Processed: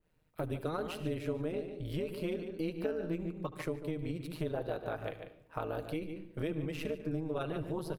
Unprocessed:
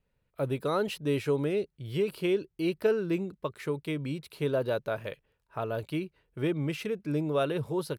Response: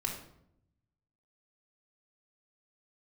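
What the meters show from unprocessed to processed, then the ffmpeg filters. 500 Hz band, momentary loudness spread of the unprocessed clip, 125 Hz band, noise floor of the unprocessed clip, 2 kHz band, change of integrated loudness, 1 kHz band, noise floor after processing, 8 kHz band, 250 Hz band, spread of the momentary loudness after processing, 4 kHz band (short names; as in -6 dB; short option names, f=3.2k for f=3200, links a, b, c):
-7.5 dB, 8 LU, -5.0 dB, -78 dBFS, -7.5 dB, -7.0 dB, -5.5 dB, -67 dBFS, n/a, -5.5 dB, 4 LU, -8.0 dB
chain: -filter_complex "[0:a]aecho=1:1:6.5:0.31,tremolo=f=160:d=0.857,highshelf=f=12k:g=3,asplit=2[a][b];[b]adelay=145.8,volume=-11dB,highshelf=f=4k:g=-3.28[c];[a][c]amix=inputs=2:normalize=0,asplit=2[d][e];[1:a]atrim=start_sample=2205,adelay=72[f];[e][f]afir=irnorm=-1:irlink=0,volume=-17.5dB[g];[d][g]amix=inputs=2:normalize=0,acompressor=threshold=-41dB:ratio=3,adynamicequalizer=threshold=0.00112:dfrequency=2300:dqfactor=0.7:tfrequency=2300:tqfactor=0.7:attack=5:release=100:ratio=0.375:range=2.5:mode=cutabove:tftype=highshelf,volume=5.5dB"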